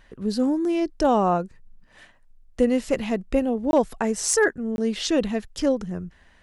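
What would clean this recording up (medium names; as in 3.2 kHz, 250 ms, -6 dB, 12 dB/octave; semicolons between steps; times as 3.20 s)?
clip repair -10 dBFS; interpolate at 3.71/4.76 s, 21 ms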